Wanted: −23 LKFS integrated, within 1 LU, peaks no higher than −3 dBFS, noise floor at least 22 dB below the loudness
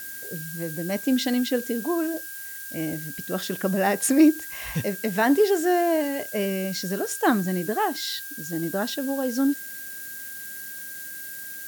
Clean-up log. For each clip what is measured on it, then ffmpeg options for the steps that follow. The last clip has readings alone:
interfering tone 1,600 Hz; level of the tone −40 dBFS; background noise floor −37 dBFS; target noise floor −48 dBFS; integrated loudness −25.5 LKFS; sample peak −7.5 dBFS; target loudness −23.0 LKFS
→ -af "bandreject=frequency=1600:width=30"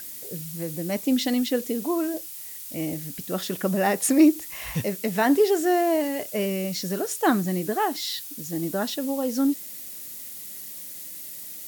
interfering tone none found; background noise floor −39 dBFS; target noise floor −48 dBFS
→ -af "afftdn=noise_reduction=9:noise_floor=-39"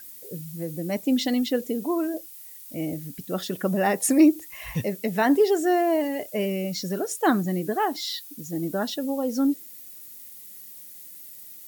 background noise floor −44 dBFS; target noise floor −47 dBFS
→ -af "afftdn=noise_reduction=6:noise_floor=-44"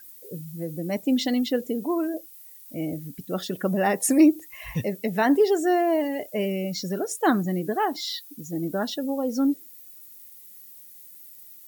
background noise floor −47 dBFS; integrated loudness −25.0 LKFS; sample peak −8.0 dBFS; target loudness −23.0 LKFS
→ -af "volume=2dB"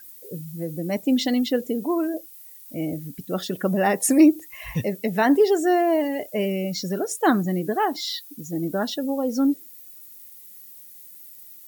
integrated loudness −23.0 LKFS; sample peak −6.0 dBFS; background noise floor −45 dBFS

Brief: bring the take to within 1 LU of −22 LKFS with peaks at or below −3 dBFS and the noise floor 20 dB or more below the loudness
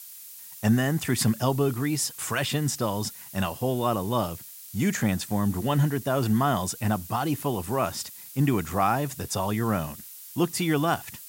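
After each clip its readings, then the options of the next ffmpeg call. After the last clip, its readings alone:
background noise floor −44 dBFS; target noise floor −47 dBFS; integrated loudness −26.5 LKFS; sample peak −10.0 dBFS; target loudness −22.0 LKFS
→ -af "afftdn=noise_reduction=6:noise_floor=-44"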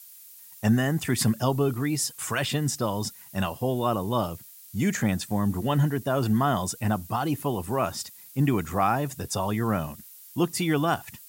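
background noise floor −48 dBFS; integrated loudness −26.5 LKFS; sample peak −10.0 dBFS; target loudness −22.0 LKFS
→ -af "volume=4.5dB"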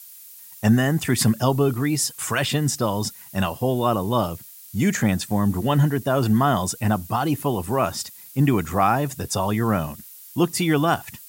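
integrated loudness −22.0 LKFS; sample peak −5.5 dBFS; background noise floor −44 dBFS

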